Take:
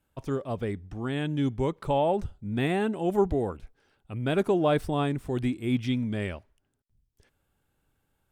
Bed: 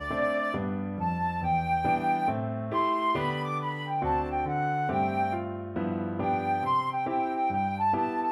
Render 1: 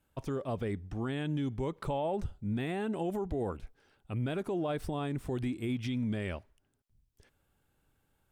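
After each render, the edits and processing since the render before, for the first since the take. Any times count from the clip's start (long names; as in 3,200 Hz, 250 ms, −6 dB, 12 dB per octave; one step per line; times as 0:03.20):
downward compressor, threshold −26 dBFS, peak gain reduction 8.5 dB
brickwall limiter −25.5 dBFS, peak gain reduction 7.5 dB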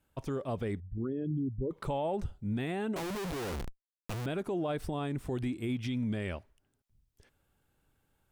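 0:00.80–0:01.71: spectral envelope exaggerated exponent 3
0:02.96–0:04.26: comparator with hysteresis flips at −53.5 dBFS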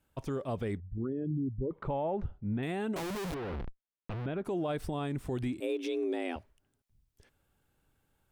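0:00.77–0:02.63: low-pass filter 1,900 Hz
0:03.34–0:04.45: high-frequency loss of the air 370 metres
0:05.60–0:06.36: frequency shifter +170 Hz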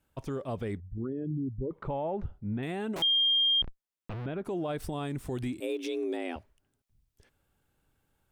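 0:03.02–0:03.62: beep over 3,210 Hz −22 dBFS
0:04.80–0:06.17: high-shelf EQ 5,000 Hz +6.5 dB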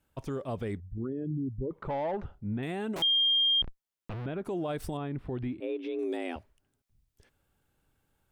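0:01.88–0:02.35: mid-hump overdrive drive 12 dB, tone 3,700 Hz, clips at −25 dBFS
0:04.97–0:05.99: high-frequency loss of the air 390 metres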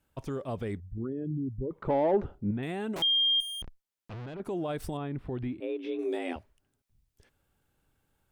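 0:01.87–0:02.51: parametric band 350 Hz +11.5 dB 1.6 octaves
0:03.40–0:04.40: tube saturation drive 37 dB, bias 0.25
0:05.83–0:06.33: double-tracking delay 23 ms −5 dB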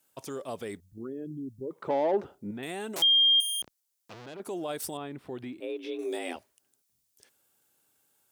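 high-pass filter 130 Hz 12 dB per octave
bass and treble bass −9 dB, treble +13 dB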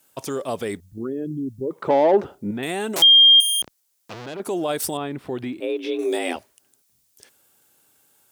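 level +10 dB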